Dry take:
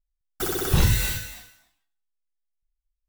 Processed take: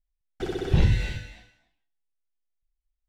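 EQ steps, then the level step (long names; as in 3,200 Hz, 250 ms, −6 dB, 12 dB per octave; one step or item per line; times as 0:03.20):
low-pass filter 2,600 Hz 12 dB per octave
parametric band 1,200 Hz −13 dB 0.68 octaves
0.0 dB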